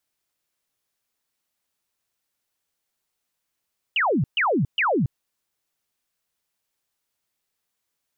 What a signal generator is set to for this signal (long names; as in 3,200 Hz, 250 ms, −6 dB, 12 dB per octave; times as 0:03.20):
repeated falling chirps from 3,100 Hz, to 110 Hz, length 0.28 s sine, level −18 dB, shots 3, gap 0.13 s